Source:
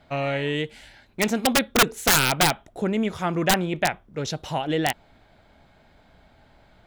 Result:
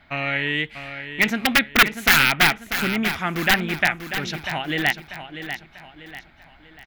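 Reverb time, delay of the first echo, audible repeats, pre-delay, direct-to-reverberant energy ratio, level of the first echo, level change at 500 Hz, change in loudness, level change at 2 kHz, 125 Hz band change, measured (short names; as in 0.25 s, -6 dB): none, 0.642 s, 4, none, none, -10.0 dB, -4.5 dB, +3.0 dB, +8.0 dB, -1.0 dB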